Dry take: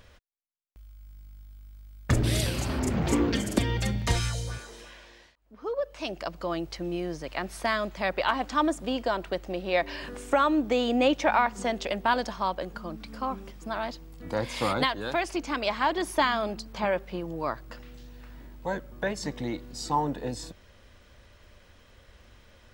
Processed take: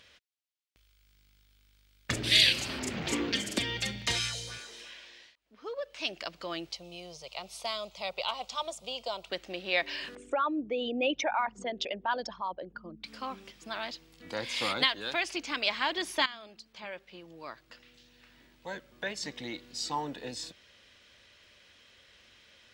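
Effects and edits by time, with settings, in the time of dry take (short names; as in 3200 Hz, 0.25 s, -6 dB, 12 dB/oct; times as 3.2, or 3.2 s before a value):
2.32–2.53 spectral gain 1600–4800 Hz +10 dB
6.72–9.3 fixed phaser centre 710 Hz, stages 4
10.15–13.04 formant sharpening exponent 2
16.26–19.69 fade in, from -15 dB
whole clip: weighting filter D; gain -7 dB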